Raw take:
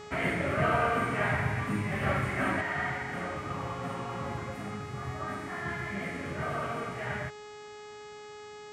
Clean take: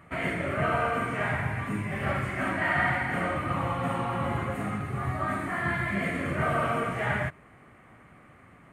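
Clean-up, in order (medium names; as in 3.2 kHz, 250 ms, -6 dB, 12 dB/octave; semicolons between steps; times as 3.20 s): de-hum 419.5 Hz, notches 19; gain correction +7 dB, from 2.61 s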